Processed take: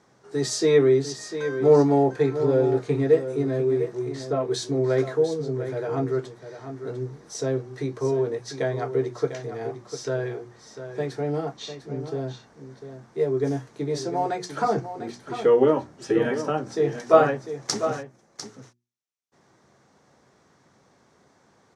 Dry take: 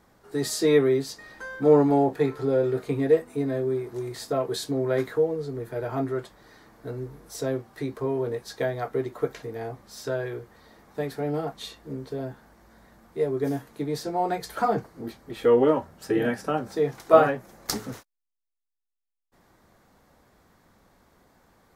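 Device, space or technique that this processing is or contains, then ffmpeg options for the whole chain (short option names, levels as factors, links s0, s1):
car door speaker: -filter_complex "[0:a]asettb=1/sr,asplit=3[s0][s1][s2];[s0]atrim=end=11.574[s3];[s1]atrim=start=11.57:end=12,asetpts=PTS-STARTPTS,afade=t=in:d=0.004:c=qsin,afade=t=out:st=0.426:d=0.004:c=qsin,lowpass=f=6900:w=0.5412,lowpass=f=6900:w=1.3066[s4];[s2]atrim=start=11.996[s5];[s3][s4]acrossfade=d=0.004:c1=hsin:c2=qsin[s6];[s6][s5]acrossfade=d=0.004:c1=qsin:c2=hsin,highpass=110,equalizer=f=130:t=q:w=4:g=7,equalizer=f=390:t=q:w=4:g=4,equalizer=f=5900:t=q:w=4:g=7,lowpass=f=8700:w=0.5412,lowpass=f=8700:w=1.3066,bandreject=f=60:t=h:w=6,bandreject=f=120:t=h:w=6,bandreject=f=180:t=h:w=6,bandreject=f=240:t=h:w=6,bandreject=f=300:t=h:w=6,bandreject=f=360:t=h:w=6,asettb=1/sr,asplit=3[s7][s8][s9];[s7]atrim=end=3.954[s10];[s8]atrim=start=3.95:end=4.51,asetpts=PTS-STARTPTS,afade=t=in:d=0.004:c=qsin,afade=t=out:st=0.556:d=0.004:c=qsin,highshelf=f=4600:g=-9.5[s11];[s9]atrim=start=4.506[s12];[s10][s11]acrossfade=d=0.004:c1=hsin:c2=qsin[s13];[s13][s12]acrossfade=d=0.004:c1=qsin:c2=hsin,aecho=1:1:699:0.299"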